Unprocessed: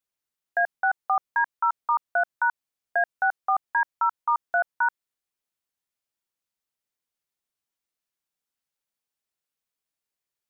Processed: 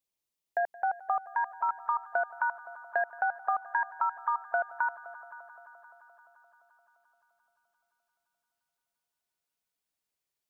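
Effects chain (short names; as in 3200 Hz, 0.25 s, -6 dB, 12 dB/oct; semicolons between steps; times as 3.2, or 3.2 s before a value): bell 1500 Hz -11 dB 0.59 oct, from 1.69 s -3 dB; compressor, threshold -25 dBFS, peak gain reduction 6 dB; multi-head echo 0.173 s, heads all three, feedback 59%, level -21 dB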